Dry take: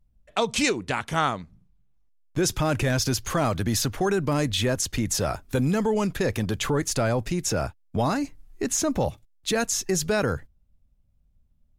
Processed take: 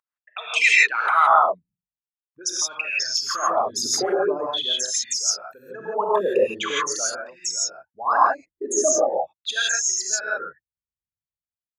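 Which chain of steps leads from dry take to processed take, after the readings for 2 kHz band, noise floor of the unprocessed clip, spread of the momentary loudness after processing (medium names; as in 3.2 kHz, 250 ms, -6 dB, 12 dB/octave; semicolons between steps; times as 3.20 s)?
+8.5 dB, -64 dBFS, 14 LU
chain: resonances exaggerated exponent 3; gated-style reverb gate 190 ms rising, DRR -5 dB; LFO high-pass sine 0.43 Hz 570–2100 Hz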